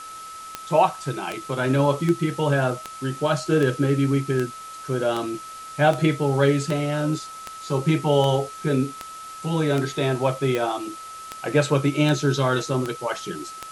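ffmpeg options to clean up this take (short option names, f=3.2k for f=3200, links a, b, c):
-af "adeclick=t=4,bandreject=f=1.3k:w=30,afwtdn=0.0071"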